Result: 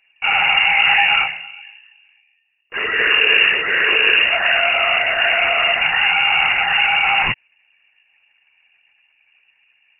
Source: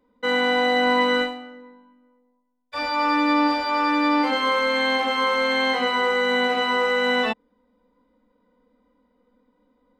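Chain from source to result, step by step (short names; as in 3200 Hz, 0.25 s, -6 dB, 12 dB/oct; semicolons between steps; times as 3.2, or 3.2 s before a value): LPC vocoder at 8 kHz whisper; inverted band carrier 2800 Hz; gain +5 dB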